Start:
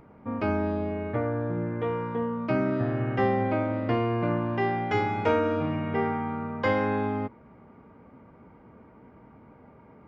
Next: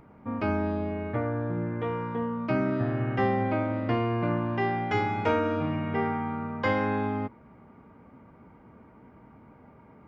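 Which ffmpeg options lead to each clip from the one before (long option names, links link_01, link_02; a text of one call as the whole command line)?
ffmpeg -i in.wav -af "equalizer=frequency=480:width_type=o:width=0.77:gain=-3" out.wav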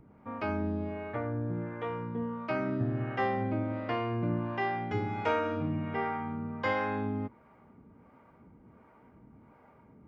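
ffmpeg -i in.wav -filter_complex "[0:a]acrossover=split=430[link_01][link_02];[link_01]aeval=exprs='val(0)*(1-0.7/2+0.7/2*cos(2*PI*1.4*n/s))':channel_layout=same[link_03];[link_02]aeval=exprs='val(0)*(1-0.7/2-0.7/2*cos(2*PI*1.4*n/s))':channel_layout=same[link_04];[link_03][link_04]amix=inputs=2:normalize=0,volume=-1.5dB" out.wav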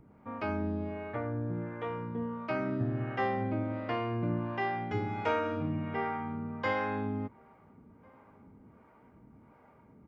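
ffmpeg -i in.wav -filter_complex "[0:a]asplit=2[link_01][link_02];[link_02]adelay=1399,volume=-28dB,highshelf=frequency=4000:gain=-31.5[link_03];[link_01][link_03]amix=inputs=2:normalize=0,volume=-1dB" out.wav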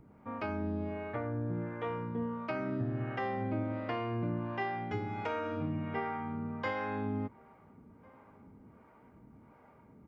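ffmpeg -i in.wav -af "alimiter=level_in=1dB:limit=-24dB:level=0:latency=1:release=470,volume=-1dB" out.wav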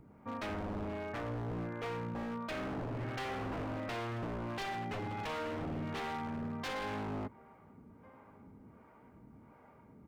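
ffmpeg -i in.wav -af "aeval=exprs='0.0211*(abs(mod(val(0)/0.0211+3,4)-2)-1)':channel_layout=same" out.wav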